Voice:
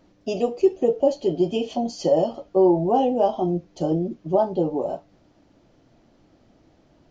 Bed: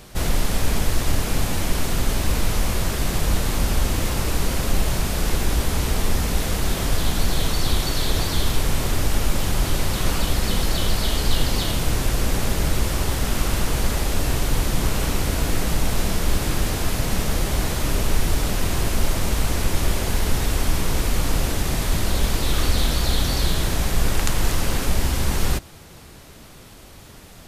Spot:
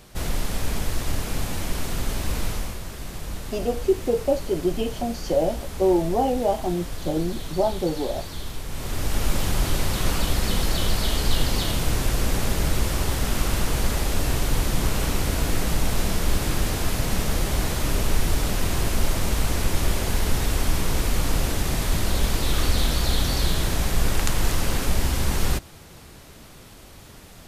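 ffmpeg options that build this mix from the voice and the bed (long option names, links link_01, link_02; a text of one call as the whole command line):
ffmpeg -i stem1.wav -i stem2.wav -filter_complex "[0:a]adelay=3250,volume=-2.5dB[link_01];[1:a]volume=5.5dB,afade=type=out:start_time=2.46:duration=0.33:silence=0.446684,afade=type=in:start_time=8.68:duration=0.63:silence=0.298538[link_02];[link_01][link_02]amix=inputs=2:normalize=0" out.wav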